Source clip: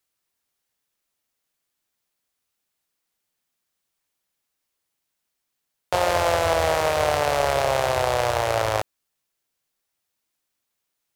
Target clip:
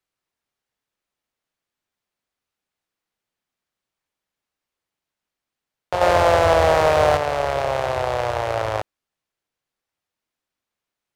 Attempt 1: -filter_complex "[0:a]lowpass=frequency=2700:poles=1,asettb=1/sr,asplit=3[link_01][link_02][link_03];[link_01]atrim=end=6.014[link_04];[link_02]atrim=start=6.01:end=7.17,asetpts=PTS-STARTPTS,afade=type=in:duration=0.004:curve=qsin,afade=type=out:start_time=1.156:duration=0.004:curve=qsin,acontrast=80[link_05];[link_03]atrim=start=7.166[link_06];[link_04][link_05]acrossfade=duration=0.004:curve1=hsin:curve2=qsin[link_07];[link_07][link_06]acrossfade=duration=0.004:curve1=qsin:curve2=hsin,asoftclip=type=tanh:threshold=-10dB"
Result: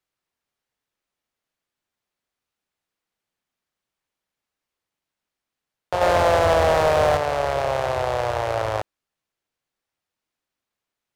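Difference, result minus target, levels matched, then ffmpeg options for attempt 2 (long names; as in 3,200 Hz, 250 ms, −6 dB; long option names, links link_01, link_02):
soft clipping: distortion +14 dB
-filter_complex "[0:a]lowpass=frequency=2700:poles=1,asettb=1/sr,asplit=3[link_01][link_02][link_03];[link_01]atrim=end=6.014[link_04];[link_02]atrim=start=6.01:end=7.17,asetpts=PTS-STARTPTS,afade=type=in:duration=0.004:curve=qsin,afade=type=out:start_time=1.156:duration=0.004:curve=qsin,acontrast=80[link_05];[link_03]atrim=start=7.166[link_06];[link_04][link_05]acrossfade=duration=0.004:curve1=hsin:curve2=qsin[link_07];[link_07][link_06]acrossfade=duration=0.004:curve1=qsin:curve2=hsin,asoftclip=type=tanh:threshold=-1dB"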